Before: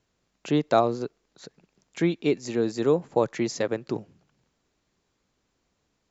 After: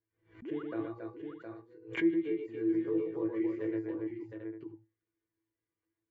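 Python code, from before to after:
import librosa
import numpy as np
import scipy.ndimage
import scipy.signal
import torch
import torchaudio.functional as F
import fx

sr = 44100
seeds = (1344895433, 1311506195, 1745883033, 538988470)

p1 = fx.high_shelf_res(x, sr, hz=4100.0, db=-8.5, q=1.5)
p2 = fx.hum_notches(p1, sr, base_hz=60, count=2)
p3 = fx.resonator_bank(p2, sr, root=45, chord='fifth', decay_s=0.36)
p4 = fx.dereverb_blind(p3, sr, rt60_s=0.88)
p5 = fx.level_steps(p4, sr, step_db=20)
p6 = p4 + (p5 * librosa.db_to_amplitude(-2.5))
p7 = fx.notch_comb(p6, sr, f0_hz=1300.0)
p8 = fx.spec_paint(p7, sr, seeds[0], shape='rise', start_s=0.42, length_s=0.21, low_hz=200.0, high_hz=1600.0, level_db=-45.0)
p9 = fx.curve_eq(p8, sr, hz=(120.0, 200.0, 320.0, 720.0, 1200.0, 2100.0, 3400.0, 5700.0), db=(0, -23, 1, -20, -8, -9, -20, -26))
p10 = fx.echo_multitap(p9, sr, ms=(48, 119, 276, 714, 789), db=(-12.0, -4.0, -5.0, -6.0, -12.5))
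p11 = fx.pre_swell(p10, sr, db_per_s=140.0)
y = p11 * librosa.db_to_amplitude(3.0)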